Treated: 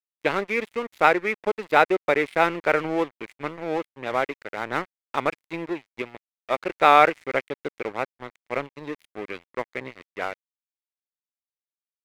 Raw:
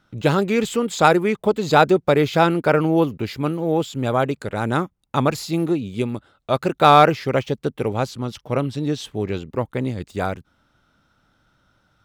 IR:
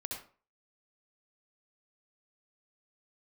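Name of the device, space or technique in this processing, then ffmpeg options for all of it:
pocket radio on a weak battery: -af "highpass=350,lowpass=3200,aeval=exprs='sgn(val(0))*max(abs(val(0))-0.0266,0)':channel_layout=same,equalizer=frequency=2100:width_type=o:width=0.54:gain=10,volume=-3dB"

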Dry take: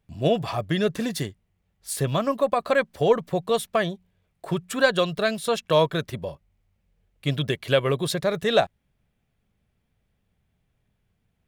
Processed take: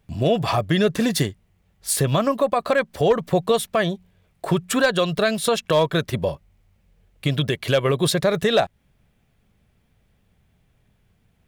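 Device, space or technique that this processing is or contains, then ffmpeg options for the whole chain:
clipper into limiter: -af "asoftclip=type=hard:threshold=-11dB,alimiter=limit=-19dB:level=0:latency=1:release=208,volume=9dB"

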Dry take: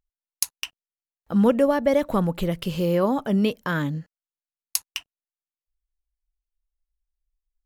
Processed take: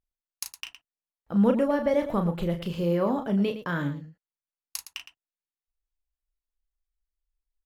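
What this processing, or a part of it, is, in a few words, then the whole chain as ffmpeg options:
slapback doubling: -filter_complex "[0:a]asplit=3[link_01][link_02][link_03];[link_02]adelay=35,volume=-7dB[link_04];[link_03]adelay=113,volume=-12dB[link_05];[link_01][link_04][link_05]amix=inputs=3:normalize=0,highshelf=frequency=4400:gain=-8,volume=-4.5dB"

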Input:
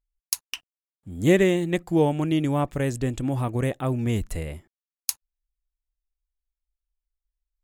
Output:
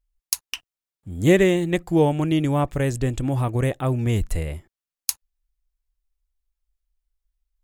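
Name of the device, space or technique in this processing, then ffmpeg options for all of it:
low shelf boost with a cut just above: -af "lowshelf=frequency=79:gain=6.5,equalizer=frequency=230:width_type=o:width=0.57:gain=-3.5,volume=2.5dB"

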